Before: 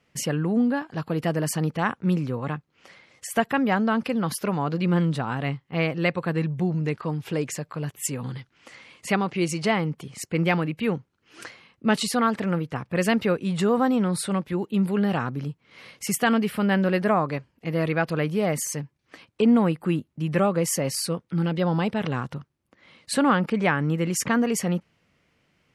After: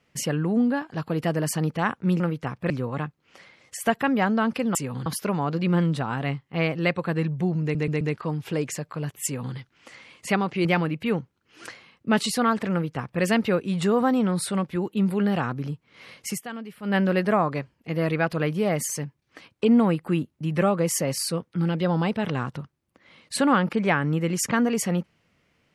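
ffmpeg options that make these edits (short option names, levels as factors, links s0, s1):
-filter_complex "[0:a]asplit=11[s0][s1][s2][s3][s4][s5][s6][s7][s8][s9][s10];[s0]atrim=end=2.202[s11];[s1]atrim=start=12.488:end=12.992[s12];[s2]atrim=start=2.198:end=4.252[s13];[s3]atrim=start=8.038:end=8.352[s14];[s4]atrim=start=4.248:end=6.942[s15];[s5]atrim=start=6.808:end=6.942[s16];[s6]atrim=start=6.808:end=6.942[s17];[s7]atrim=start=6.808:end=9.452[s18];[s8]atrim=start=10.418:end=16.18,asetpts=PTS-STARTPTS,afade=t=out:st=5.632:d=0.13:silence=0.188365[s19];[s9]atrim=start=16.18:end=16.59,asetpts=PTS-STARTPTS,volume=0.188[s20];[s10]atrim=start=16.59,asetpts=PTS-STARTPTS,afade=t=in:d=0.13:silence=0.188365[s21];[s11][s12]acrossfade=d=0.004:c1=hsin:c2=hsin[s22];[s22][s13]acrossfade=d=0.004:c1=hsin:c2=hsin[s23];[s23][s14]acrossfade=d=0.004:c1=hsin:c2=hsin[s24];[s24][s15]acrossfade=d=0.004:c1=hsin:c2=hsin[s25];[s25][s16]acrossfade=d=0.004:c1=hsin:c2=hsin[s26];[s26][s17]acrossfade=d=0.004:c1=hsin:c2=hsin[s27];[s27][s18]acrossfade=d=0.004:c1=hsin:c2=hsin[s28];[s19][s20][s21]concat=n=3:v=0:a=1[s29];[s28][s29]acrossfade=d=0.004:c1=hsin:c2=hsin"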